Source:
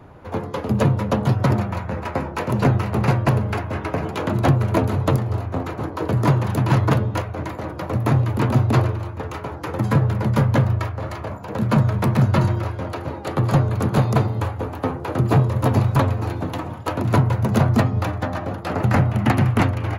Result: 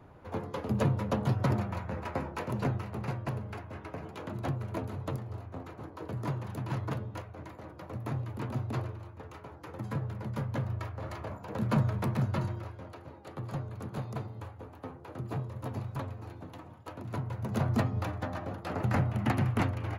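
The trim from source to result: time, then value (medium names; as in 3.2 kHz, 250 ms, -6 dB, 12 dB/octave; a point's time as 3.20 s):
2.26 s -10 dB
3.02 s -17 dB
10.50 s -17 dB
11.13 s -10 dB
11.80 s -10 dB
13.08 s -19.5 dB
17.15 s -19.5 dB
17.74 s -11 dB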